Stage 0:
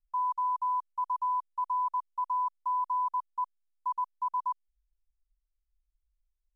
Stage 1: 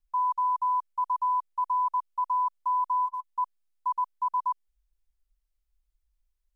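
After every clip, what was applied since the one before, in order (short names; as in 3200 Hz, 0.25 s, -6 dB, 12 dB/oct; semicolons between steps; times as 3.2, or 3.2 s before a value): spectral delete 3.06–3.27, 400–1000 Hz; gain +3.5 dB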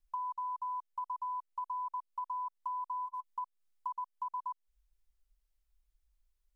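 compressor, threshold -37 dBFS, peak gain reduction 12 dB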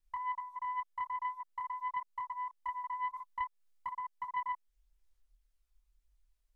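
chorus voices 2, 0.49 Hz, delay 27 ms, depth 2.5 ms; Doppler distortion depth 0.22 ms; gain +4 dB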